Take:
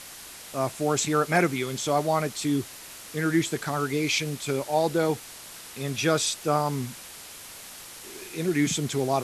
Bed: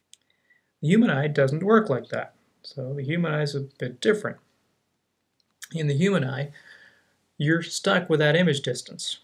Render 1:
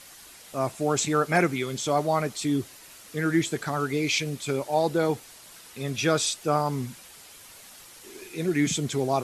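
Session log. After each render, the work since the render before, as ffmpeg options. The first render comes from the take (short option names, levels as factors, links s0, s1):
-af "afftdn=nr=7:nf=-44"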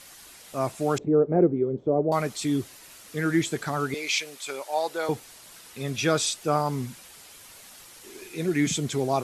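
-filter_complex "[0:a]asettb=1/sr,asplit=3[s0][s1][s2];[s0]atrim=end=0.984[s3];[s1]atrim=start=0.98:end=2.12,asetpts=PTS-STARTPTS,afade=t=in:d=0.004:c=qsin,afade=t=out:st=1.136:d=0.004:c=qsin,lowpass=f=440:t=q:w=2.3[s4];[s2]atrim=start=2.116[s5];[s3][s4]acrossfade=d=0.004:c1=hsin:c2=qsin[s6];[s6][s5]acrossfade=d=0.004:c1=qsin:c2=hsin,asettb=1/sr,asplit=3[s7][s8][s9];[s7]atrim=end=3.944[s10];[s8]atrim=start=3.94:end=5.09,asetpts=PTS-STARTPTS,afade=t=in:d=0.004:c=qsin,afade=t=out:st=1.146:d=0.004:c=qsin,highpass=630[s11];[s9]atrim=start=5.086[s12];[s10][s11]acrossfade=d=0.004:c1=hsin:c2=qsin[s13];[s13][s12]acrossfade=d=0.004:c1=qsin:c2=hsin"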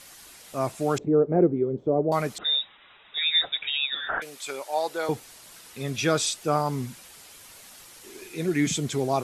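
-filter_complex "[0:a]asettb=1/sr,asplit=3[s0][s1][s2];[s0]atrim=end=2.384[s3];[s1]atrim=start=2.38:end=4.22,asetpts=PTS-STARTPTS,afade=t=in:d=0.004:c=qsin,afade=t=out:st=1.836:d=0.004:c=qsin,lowpass=f=3300:t=q:w=0.5098,lowpass=f=3300:t=q:w=0.6013,lowpass=f=3300:t=q:w=0.9,lowpass=f=3300:t=q:w=2.563,afreqshift=-3900[s4];[s2]atrim=start=4.216[s5];[s3][s4]acrossfade=d=0.004:c1=hsin:c2=qsin[s6];[s6][s5]acrossfade=d=0.004:c1=qsin:c2=hsin"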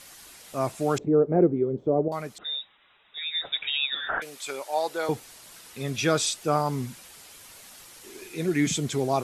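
-filter_complex "[0:a]asplit=3[s0][s1][s2];[s0]atrim=end=2.082[s3];[s1]atrim=start=2.078:end=3.452,asetpts=PTS-STARTPTS,volume=0.422[s4];[s2]atrim=start=3.448[s5];[s3][s4]acrossfade=d=0.004:c1=hsin:c2=hsin[s6];[s6][s5]acrossfade=d=0.004:c1=hsin:c2=hsin"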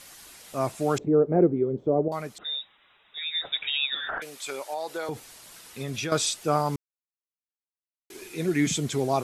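-filter_complex "[0:a]asettb=1/sr,asplit=3[s0][s1][s2];[s0]atrim=end=4.044[s3];[s1]atrim=start=4.04:end=6.12,asetpts=PTS-STARTPTS,afade=t=in:d=0.004:c=qsin,afade=t=out:st=2.076:d=0.004:c=qsin,acompressor=threshold=0.0447:ratio=6:attack=3.2:release=140:knee=1:detection=peak[s4];[s2]atrim=start=6.116[s5];[s3][s4]acrossfade=d=0.004:c1=hsin:c2=qsin[s6];[s6][s5]acrossfade=d=0.004:c1=qsin:c2=hsin,asplit=3[s7][s8][s9];[s7]atrim=end=6.76,asetpts=PTS-STARTPTS,afade=t=out:st=6.756:d=0.004:c=hsin[s10];[s8]atrim=start=6.76:end=8.1,asetpts=PTS-STARTPTS,volume=0[s11];[s9]atrim=start=8.1,asetpts=PTS-STARTPTS,afade=t=in:d=0.004:c=hsin[s12];[s10][s11][s12]concat=n=3:v=0:a=1"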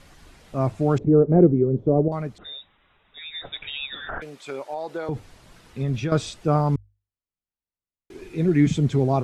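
-af "aemphasis=mode=reproduction:type=riaa,bandreject=f=50:t=h:w=6,bandreject=f=100:t=h:w=6"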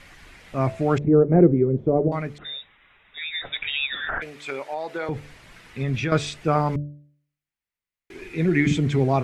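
-af "equalizer=f=2100:w=1.3:g=10.5,bandreject=f=73.06:t=h:w=4,bandreject=f=146.12:t=h:w=4,bandreject=f=219.18:t=h:w=4,bandreject=f=292.24:t=h:w=4,bandreject=f=365.3:t=h:w=4,bandreject=f=438.36:t=h:w=4,bandreject=f=511.42:t=h:w=4,bandreject=f=584.48:t=h:w=4,bandreject=f=657.54:t=h:w=4"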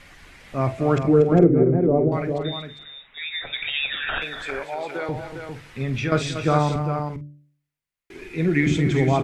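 -filter_complex "[0:a]asplit=2[s0][s1];[s1]adelay=47,volume=0.237[s2];[s0][s2]amix=inputs=2:normalize=0,aecho=1:1:237|404:0.299|0.447"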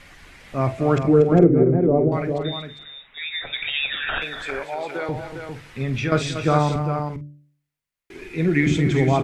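-af "volume=1.12"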